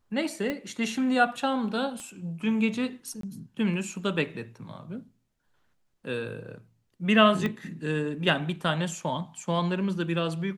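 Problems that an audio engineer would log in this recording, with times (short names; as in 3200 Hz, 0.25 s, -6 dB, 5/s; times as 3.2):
0.5 pop -17 dBFS
2 pop -27 dBFS
3.21–3.23 gap 23 ms
7.46 pop -17 dBFS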